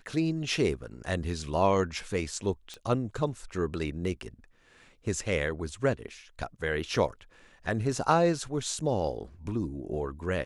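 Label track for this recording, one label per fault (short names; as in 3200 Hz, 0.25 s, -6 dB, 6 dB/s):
2.740000	2.740000	pop -26 dBFS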